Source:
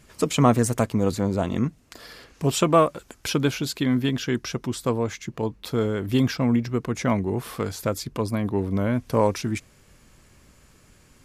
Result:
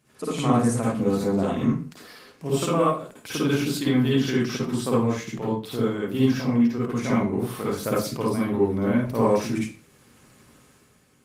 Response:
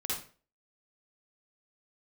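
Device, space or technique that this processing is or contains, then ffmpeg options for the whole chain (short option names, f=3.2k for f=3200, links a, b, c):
far-field microphone of a smart speaker: -filter_complex "[1:a]atrim=start_sample=2205[a];[0:a][a]afir=irnorm=-1:irlink=0,highpass=130,dynaudnorm=f=100:g=11:m=8dB,volume=-7dB" -ar 48000 -c:a libopus -b:a 32k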